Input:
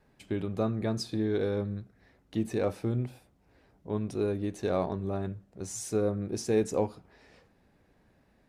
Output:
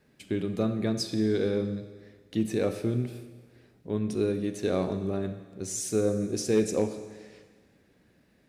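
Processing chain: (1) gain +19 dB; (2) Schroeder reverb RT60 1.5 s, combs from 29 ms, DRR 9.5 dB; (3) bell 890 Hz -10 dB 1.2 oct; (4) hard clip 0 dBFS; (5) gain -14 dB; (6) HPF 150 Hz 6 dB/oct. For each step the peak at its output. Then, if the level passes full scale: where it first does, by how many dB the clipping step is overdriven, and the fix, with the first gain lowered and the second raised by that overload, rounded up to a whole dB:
+4.5, +4.5, +3.0, 0.0, -14.0, -13.5 dBFS; step 1, 3.0 dB; step 1 +16 dB, step 5 -11 dB

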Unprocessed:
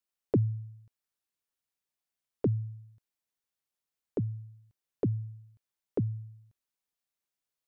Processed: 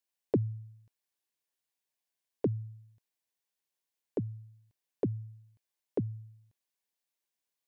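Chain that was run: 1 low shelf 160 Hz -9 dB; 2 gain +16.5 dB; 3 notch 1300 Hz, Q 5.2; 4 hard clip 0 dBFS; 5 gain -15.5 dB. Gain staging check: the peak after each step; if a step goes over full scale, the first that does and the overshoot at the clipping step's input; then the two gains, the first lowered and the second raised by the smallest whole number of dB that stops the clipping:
-18.0, -1.5, -1.5, -1.5, -17.0 dBFS; no overload

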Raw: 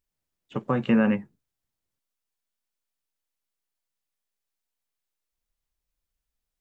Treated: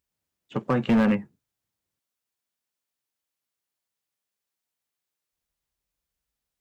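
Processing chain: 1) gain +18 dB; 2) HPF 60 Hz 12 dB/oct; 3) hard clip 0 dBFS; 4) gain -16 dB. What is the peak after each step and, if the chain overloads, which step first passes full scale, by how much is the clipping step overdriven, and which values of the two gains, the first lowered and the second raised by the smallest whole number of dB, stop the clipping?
+7.5, +7.0, 0.0, -16.0 dBFS; step 1, 7.0 dB; step 1 +11 dB, step 4 -9 dB

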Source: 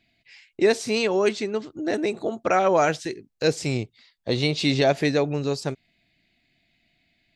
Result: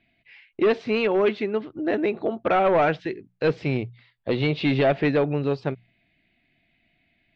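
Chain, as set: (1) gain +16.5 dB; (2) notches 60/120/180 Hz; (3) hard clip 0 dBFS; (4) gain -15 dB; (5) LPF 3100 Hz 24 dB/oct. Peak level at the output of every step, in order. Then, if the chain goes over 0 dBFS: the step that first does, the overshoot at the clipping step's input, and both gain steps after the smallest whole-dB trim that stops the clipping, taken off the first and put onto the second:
+8.5, +8.5, 0.0, -15.0, -13.0 dBFS; step 1, 8.5 dB; step 1 +7.5 dB, step 4 -6 dB

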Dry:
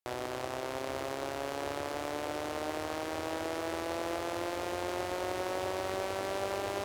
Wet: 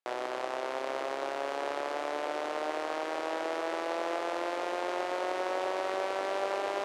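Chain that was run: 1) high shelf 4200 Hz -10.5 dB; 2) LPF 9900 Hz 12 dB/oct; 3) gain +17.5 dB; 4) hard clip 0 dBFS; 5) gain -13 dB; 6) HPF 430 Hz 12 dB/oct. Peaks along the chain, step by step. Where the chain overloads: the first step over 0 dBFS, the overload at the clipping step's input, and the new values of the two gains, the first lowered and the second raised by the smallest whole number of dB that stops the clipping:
-21.0, -21.0, -3.5, -3.5, -16.5, -19.0 dBFS; no overload

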